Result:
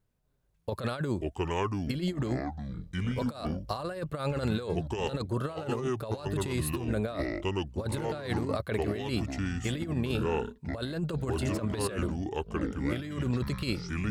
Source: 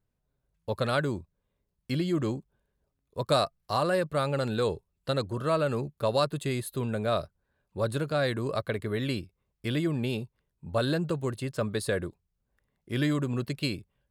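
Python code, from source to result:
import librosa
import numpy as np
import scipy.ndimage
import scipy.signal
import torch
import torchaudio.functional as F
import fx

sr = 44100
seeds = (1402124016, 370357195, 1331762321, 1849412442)

y = fx.echo_pitch(x, sr, ms=252, semitones=-6, count=3, db_per_echo=-6.0)
y = fx.over_compress(y, sr, threshold_db=-30.0, ratio=-0.5)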